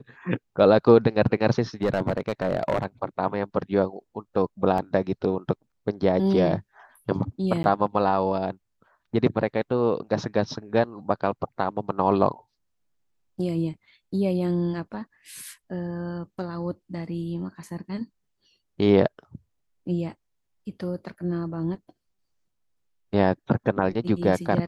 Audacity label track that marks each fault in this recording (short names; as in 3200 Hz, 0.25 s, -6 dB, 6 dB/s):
1.820000	2.860000	clipped -17.5 dBFS
4.780000	4.780000	gap 2.6 ms
7.630000	7.640000	gap 11 ms